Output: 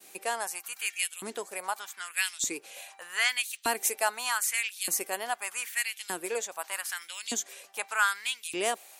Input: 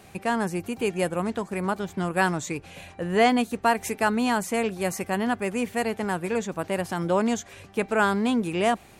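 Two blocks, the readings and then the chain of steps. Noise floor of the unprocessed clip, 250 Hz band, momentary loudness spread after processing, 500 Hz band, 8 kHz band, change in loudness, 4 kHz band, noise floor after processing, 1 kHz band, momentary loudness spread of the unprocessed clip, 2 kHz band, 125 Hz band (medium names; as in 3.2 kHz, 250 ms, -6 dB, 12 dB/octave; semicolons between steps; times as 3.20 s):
-50 dBFS, -20.5 dB, 9 LU, -12.0 dB, +7.0 dB, -5.0 dB, +2.0 dB, -56 dBFS, -7.5 dB, 7 LU, -1.0 dB, under -25 dB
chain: pre-emphasis filter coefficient 0.9; LFO high-pass saw up 0.82 Hz 280–3700 Hz; expander -58 dBFS; trim +6.5 dB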